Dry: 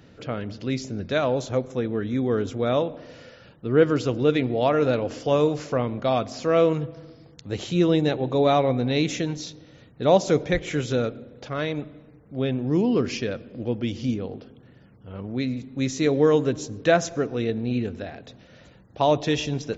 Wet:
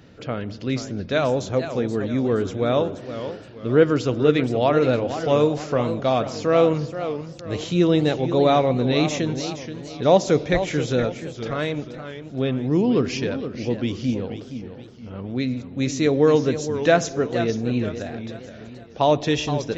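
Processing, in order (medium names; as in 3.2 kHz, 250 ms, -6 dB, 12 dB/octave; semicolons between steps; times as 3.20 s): modulated delay 474 ms, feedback 41%, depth 172 cents, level -10.5 dB; trim +2 dB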